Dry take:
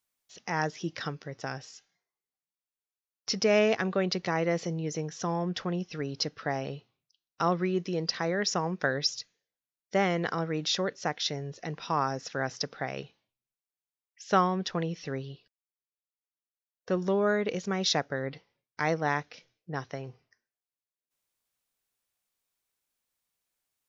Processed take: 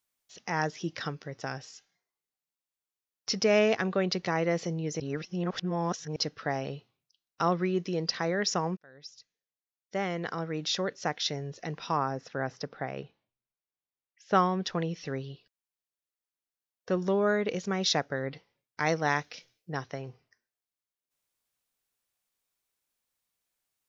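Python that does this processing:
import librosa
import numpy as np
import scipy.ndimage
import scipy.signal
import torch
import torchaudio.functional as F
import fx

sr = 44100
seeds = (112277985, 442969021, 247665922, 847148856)

y = fx.lowpass(x, sr, hz=1600.0, slope=6, at=(11.97, 14.35))
y = fx.high_shelf(y, sr, hz=3100.0, db=8.5, at=(18.86, 19.77))
y = fx.edit(y, sr, fx.reverse_span(start_s=5.0, length_s=1.16),
    fx.fade_in_span(start_s=8.77, length_s=2.33), tone=tone)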